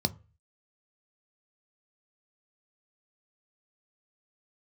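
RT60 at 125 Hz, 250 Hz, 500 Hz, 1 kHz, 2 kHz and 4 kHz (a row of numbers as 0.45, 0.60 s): 0.50, 0.30, 0.35, 0.35, 0.35, 0.20 s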